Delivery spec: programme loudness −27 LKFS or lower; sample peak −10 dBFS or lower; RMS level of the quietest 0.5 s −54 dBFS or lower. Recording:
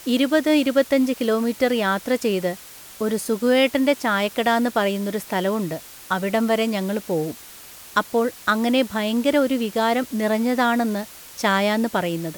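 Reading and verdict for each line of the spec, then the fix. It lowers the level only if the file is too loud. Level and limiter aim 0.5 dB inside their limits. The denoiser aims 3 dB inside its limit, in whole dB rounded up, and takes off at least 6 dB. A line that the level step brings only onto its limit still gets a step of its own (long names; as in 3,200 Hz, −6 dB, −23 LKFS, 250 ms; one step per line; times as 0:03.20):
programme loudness −21.5 LKFS: out of spec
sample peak −5.0 dBFS: out of spec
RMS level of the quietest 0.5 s −42 dBFS: out of spec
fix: broadband denoise 9 dB, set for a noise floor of −42 dBFS
level −6 dB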